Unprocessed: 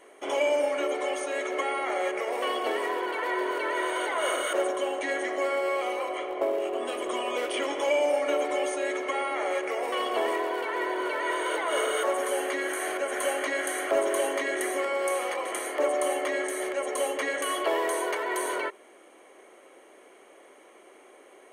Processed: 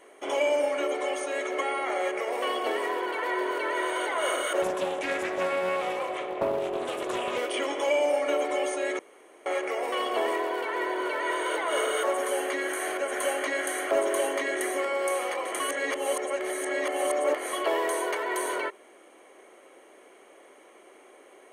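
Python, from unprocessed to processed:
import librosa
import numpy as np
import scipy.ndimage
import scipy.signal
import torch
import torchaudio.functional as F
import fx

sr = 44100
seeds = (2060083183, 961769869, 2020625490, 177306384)

y = fx.doppler_dist(x, sr, depth_ms=0.26, at=(4.62, 7.39))
y = fx.edit(y, sr, fx.room_tone_fill(start_s=8.99, length_s=0.47),
    fx.reverse_span(start_s=15.6, length_s=1.93), tone=tone)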